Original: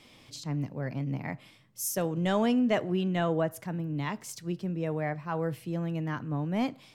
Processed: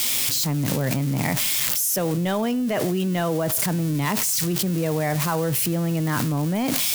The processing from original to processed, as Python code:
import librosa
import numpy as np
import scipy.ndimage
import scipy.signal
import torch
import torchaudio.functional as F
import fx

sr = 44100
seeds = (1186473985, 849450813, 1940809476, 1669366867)

y = x + 0.5 * 10.0 ** (-29.0 / 20.0) * np.diff(np.sign(x), prepend=np.sign(x[:1]))
y = fx.env_flatten(y, sr, amount_pct=100)